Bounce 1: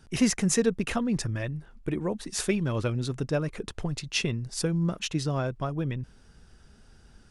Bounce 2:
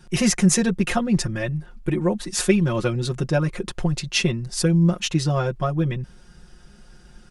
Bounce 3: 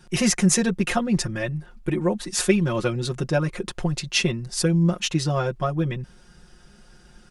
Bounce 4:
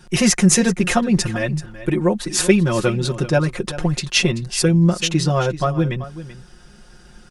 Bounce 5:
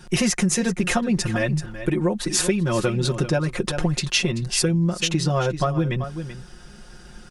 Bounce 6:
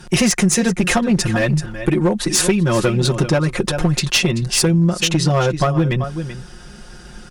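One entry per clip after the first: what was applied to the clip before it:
comb 5.6 ms, depth 93%; gain +4 dB
low shelf 170 Hz -4.5 dB
echo 0.384 s -14.5 dB; gain +5 dB
compressor 6:1, threshold -20 dBFS, peak gain reduction 12 dB; gain +2 dB
one-sided clip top -18 dBFS; gain +6 dB

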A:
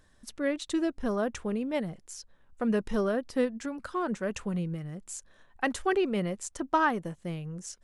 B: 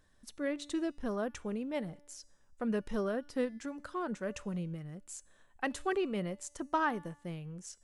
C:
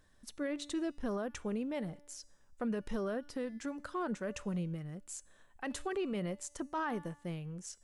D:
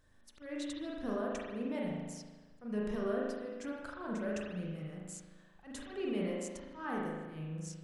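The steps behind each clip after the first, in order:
resonator 290 Hz, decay 0.89 s, mix 50%
limiter -29.5 dBFS, peak gain reduction 11 dB; gain +1 dB
auto swell 0.171 s; spring tank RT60 1.3 s, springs 38 ms, chirp 40 ms, DRR -3.5 dB; gain -3.5 dB

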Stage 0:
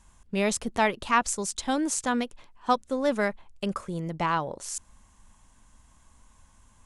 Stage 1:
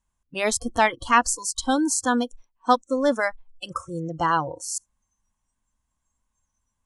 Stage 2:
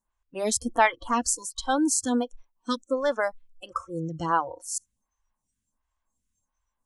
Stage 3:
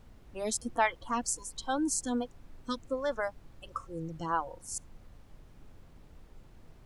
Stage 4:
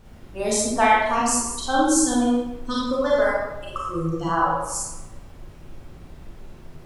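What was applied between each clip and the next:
spectral noise reduction 25 dB; gain +5 dB
photocell phaser 1.4 Hz
added noise brown -44 dBFS; gain -7 dB
reverb RT60 1.0 s, pre-delay 28 ms, DRR -6.5 dB; gain +5.5 dB

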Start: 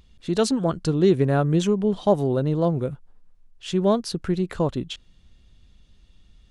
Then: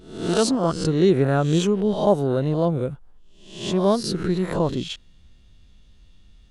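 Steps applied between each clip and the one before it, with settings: spectral swells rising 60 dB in 0.59 s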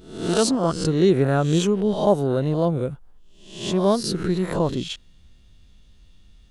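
high shelf 9100 Hz +5.5 dB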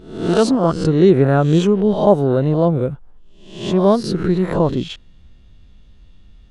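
LPF 2000 Hz 6 dB/oct; gain +6 dB

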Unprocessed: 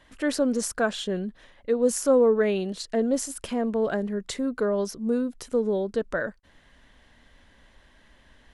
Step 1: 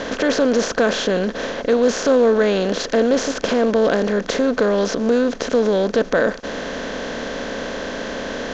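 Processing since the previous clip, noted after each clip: per-bin compression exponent 0.4; in parallel at -2 dB: limiter -17.5 dBFS, peak gain reduction 10.5 dB; on the sum: steep low-pass 6700 Hz 72 dB/oct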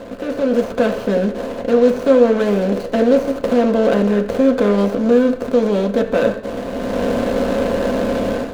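median filter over 25 samples; AGC gain up to 16 dB; on a send at -3 dB: reverb RT60 0.55 s, pre-delay 3 ms; on the sum: gain -7 dB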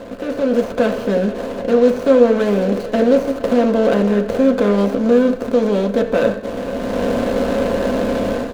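echo 0.47 s -16.5 dB

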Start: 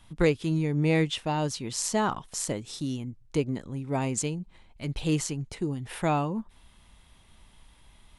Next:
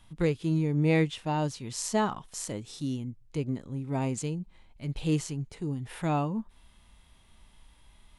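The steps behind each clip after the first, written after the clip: harmonic-percussive split percussive -8 dB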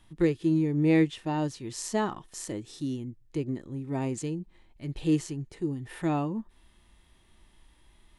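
small resonant body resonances 340/1800 Hz, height 11 dB, ringing for 45 ms; gain -2.5 dB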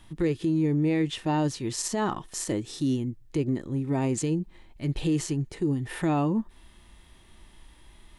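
limiter -25 dBFS, peak gain reduction 11.5 dB; gain +7 dB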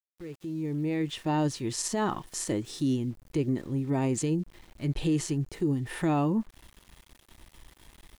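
opening faded in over 1.43 s; sample gate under -49.5 dBFS; gain -1 dB

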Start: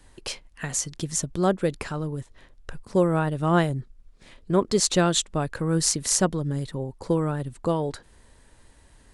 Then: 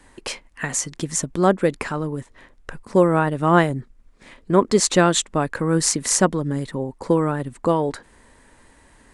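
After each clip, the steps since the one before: ten-band EQ 250 Hz +8 dB, 500 Hz +4 dB, 1000 Hz +7 dB, 2000 Hz +8 dB, 8000 Hz +5 dB; gain -1.5 dB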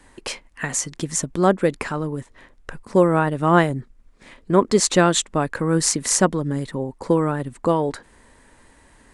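nothing audible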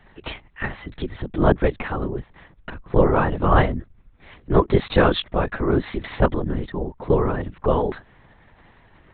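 LPC vocoder at 8 kHz whisper

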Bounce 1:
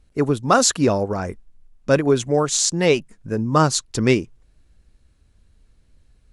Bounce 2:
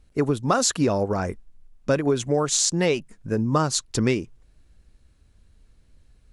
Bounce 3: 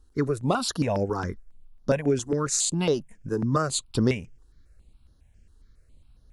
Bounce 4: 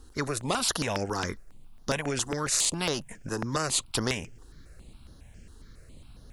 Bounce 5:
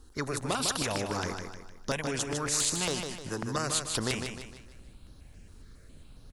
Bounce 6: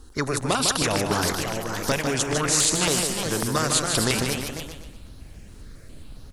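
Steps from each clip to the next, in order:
compressor 6:1, threshold -17 dBFS, peak gain reduction 7 dB
step phaser 7.3 Hz 610–8000 Hz
spectral compressor 2:1
feedback echo 0.153 s, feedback 42%, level -6 dB; gain -3 dB
echoes that change speed 0.668 s, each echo +2 st, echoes 2, each echo -6 dB; gain +7.5 dB

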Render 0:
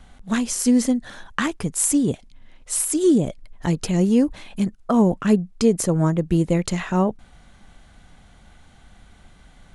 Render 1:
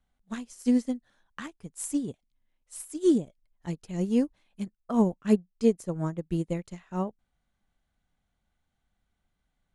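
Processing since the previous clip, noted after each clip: upward expander 2.5:1, over -29 dBFS; gain -3.5 dB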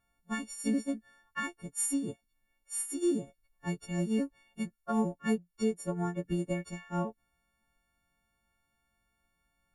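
frequency quantiser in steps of 4 st; resonant high shelf 2800 Hz -6.5 dB, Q 1.5; compressor 2.5:1, threshold -29 dBFS, peak gain reduction 9 dB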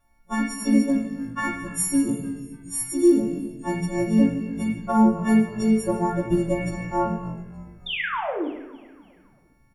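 painted sound fall, 7.86–8.47, 260–3700 Hz -38 dBFS; frequency-shifting echo 0.289 s, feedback 51%, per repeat -51 Hz, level -20.5 dB; reverb RT60 0.95 s, pre-delay 3 ms, DRR -2.5 dB; gain +4 dB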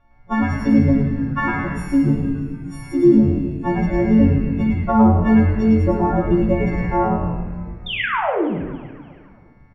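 in parallel at +3 dB: compressor, threshold -29 dBFS, peak gain reduction 16 dB; on the sum: air absorption 300 m; frequency-shifting echo 0.106 s, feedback 31%, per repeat -130 Hz, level -4.5 dB; gain +2 dB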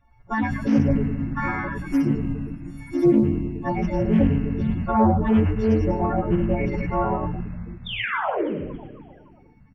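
bin magnitudes rounded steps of 30 dB; Doppler distortion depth 0.23 ms; gain -4 dB

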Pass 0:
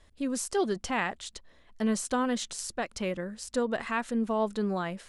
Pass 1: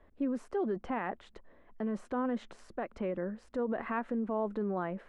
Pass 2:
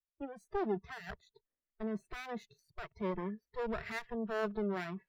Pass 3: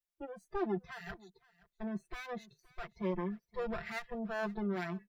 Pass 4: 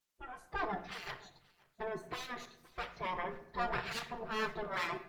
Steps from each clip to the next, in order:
tilt -2.5 dB/oct; limiter -24.5 dBFS, peak gain reduction 10.5 dB; three-band isolator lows -16 dB, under 220 Hz, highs -23 dB, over 2300 Hz; gain +1 dB
minimum comb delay 0.48 ms; spectral noise reduction 27 dB; three-band expander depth 40%
comb 5.8 ms, depth 76%; echo 0.521 s -22.5 dB; gain -2 dB
spectral gate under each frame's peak -10 dB weak; shoebox room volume 160 m³, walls mixed, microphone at 0.4 m; gain +9.5 dB; Opus 16 kbps 48000 Hz

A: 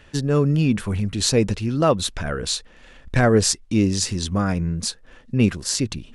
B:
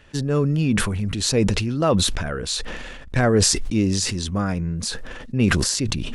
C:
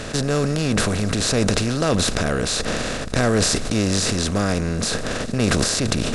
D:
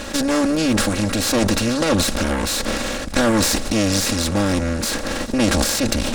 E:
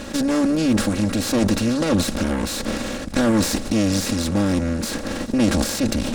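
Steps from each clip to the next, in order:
sustainer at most 29 dB/s; gain -2 dB
per-bin compression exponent 0.4; gain -5 dB
minimum comb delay 3.6 ms; gain +2.5 dB
bell 190 Hz +7 dB 2.4 oct; gain -5.5 dB

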